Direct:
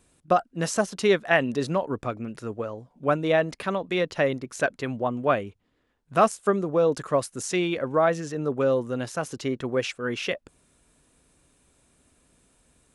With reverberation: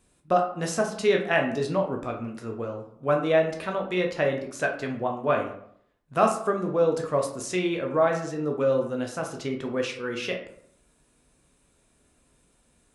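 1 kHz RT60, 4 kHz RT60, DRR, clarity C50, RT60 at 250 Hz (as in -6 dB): 0.65 s, 0.35 s, 1.5 dB, 7.5 dB, 0.65 s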